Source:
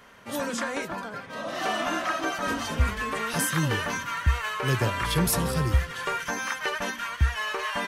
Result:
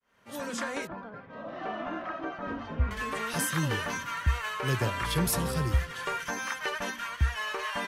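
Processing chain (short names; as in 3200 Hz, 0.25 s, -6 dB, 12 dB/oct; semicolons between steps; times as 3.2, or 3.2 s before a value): opening faded in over 0.59 s; 0.87–2.91 tape spacing loss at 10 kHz 42 dB; gain -3.5 dB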